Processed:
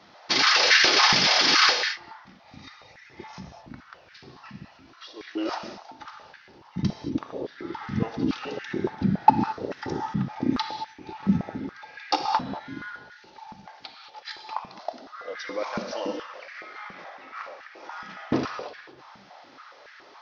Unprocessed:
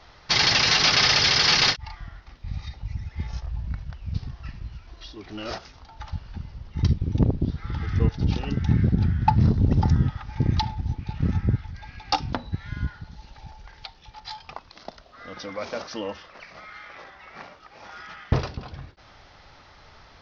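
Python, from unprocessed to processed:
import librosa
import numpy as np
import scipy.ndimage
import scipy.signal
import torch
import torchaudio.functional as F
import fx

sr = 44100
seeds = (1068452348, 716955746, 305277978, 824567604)

y = fx.rev_gated(x, sr, seeds[0], gate_ms=250, shape='flat', drr_db=4.0)
y = fx.filter_held_highpass(y, sr, hz=7.1, low_hz=200.0, high_hz=1700.0)
y = y * 10.0 ** (-2.5 / 20.0)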